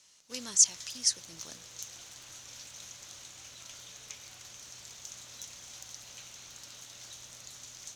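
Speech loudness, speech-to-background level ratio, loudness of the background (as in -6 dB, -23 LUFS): -26.0 LUFS, 19.5 dB, -45.5 LUFS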